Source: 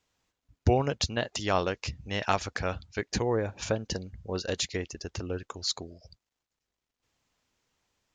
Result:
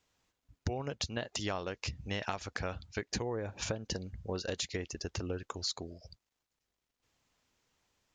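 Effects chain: compression 10:1, threshold -32 dBFS, peak gain reduction 15 dB

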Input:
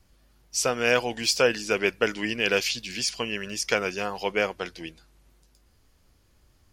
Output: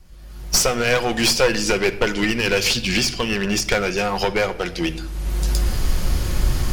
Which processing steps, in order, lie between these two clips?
recorder AGC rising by 33 dB/s; 2.77–3.72 s: treble shelf 5.6 kHz -9.5 dB; one-sided clip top -24.5 dBFS; bass shelf 100 Hz +10 dB; reverberation RT60 0.90 s, pre-delay 6 ms, DRR 9.5 dB; trim +6 dB

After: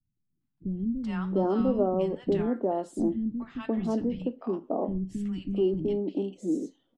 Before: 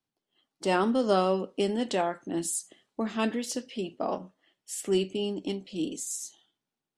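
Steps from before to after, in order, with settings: low-pass 3.1 kHz 6 dB/octave; tilt EQ -4.5 dB/octave; compression 2:1, threshold -22 dBFS, peak gain reduction 5.5 dB; three bands offset in time lows, highs, mids 410/700 ms, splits 220/1100 Hz

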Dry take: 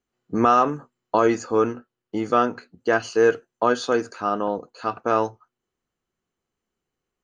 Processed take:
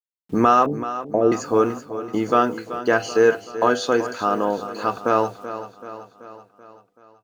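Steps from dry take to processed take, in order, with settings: in parallel at -1.5 dB: compression 4:1, threshold -28 dBFS, peak gain reduction 13 dB; on the sum: de-hum 98.21 Hz, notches 8; bit crusher 9-bit; 0.66–1.32 s: steep low-pass 730 Hz 48 dB/octave; feedback delay 382 ms, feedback 56%, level -12.5 dB

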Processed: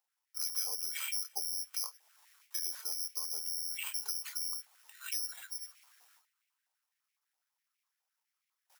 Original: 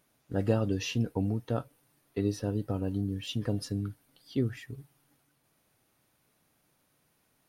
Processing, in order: gate with hold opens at -59 dBFS; comb 1.9 ms, depth 47%; compression 2.5:1, threshold -44 dBFS, peak gain reduction 15.5 dB; wide varispeed 0.851×; on a send: feedback echo behind a high-pass 94 ms, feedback 81%, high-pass 2.7 kHz, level -23.5 dB; on the sum: careless resampling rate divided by 8×, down none, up zero stuff; step-sequenced high-pass 12 Hz 790–2200 Hz; trim -5 dB

